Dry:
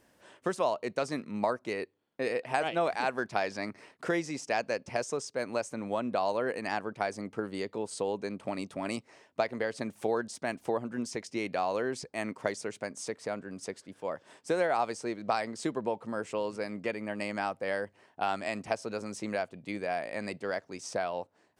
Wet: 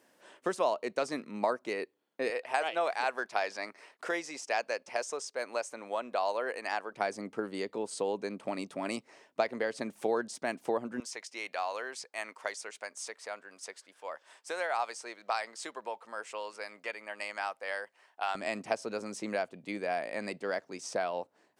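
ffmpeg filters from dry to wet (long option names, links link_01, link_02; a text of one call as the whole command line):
ffmpeg -i in.wav -af "asetnsamples=nb_out_samples=441:pad=0,asendcmd='2.3 highpass f 520;6.94 highpass f 200;11 highpass f 810;18.35 highpass f 190',highpass=250" out.wav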